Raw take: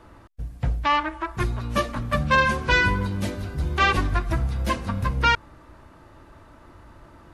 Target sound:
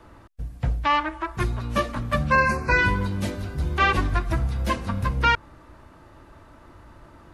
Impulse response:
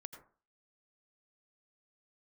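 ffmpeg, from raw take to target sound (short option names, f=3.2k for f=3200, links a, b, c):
-filter_complex "[0:a]acrossover=split=360|1500|3100[a][b][c][d];[d]alimiter=level_in=5dB:limit=-24dB:level=0:latency=1:release=125,volume=-5dB[e];[a][b][c][e]amix=inputs=4:normalize=0,asplit=3[f][g][h];[f]afade=t=out:st=2.3:d=0.02[i];[g]asuperstop=centerf=3300:order=12:qfactor=2.5,afade=t=in:st=2.3:d=0.02,afade=t=out:st=2.77:d=0.02[j];[h]afade=t=in:st=2.77:d=0.02[k];[i][j][k]amix=inputs=3:normalize=0"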